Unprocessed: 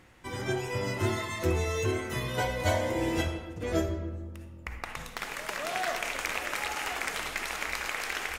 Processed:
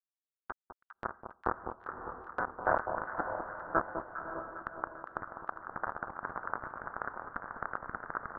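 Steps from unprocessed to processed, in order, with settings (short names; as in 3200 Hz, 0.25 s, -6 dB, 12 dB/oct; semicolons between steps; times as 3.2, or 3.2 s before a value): tracing distortion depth 0.27 ms; recorder AGC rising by 5.4 dB/s; HPF 310 Hz 6 dB/oct; notches 50/100/150/200/250/300/350/400 Hz; bit-crush 4-bit; steep low-pass 1500 Hz 72 dB/oct; tilt shelf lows -8.5 dB; diffused feedback echo 0.568 s, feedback 45%, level -9.5 dB; gate -55 dBFS, range -29 dB; echo with dull and thin repeats by turns 0.202 s, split 1100 Hz, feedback 74%, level -6.5 dB; gain +4.5 dB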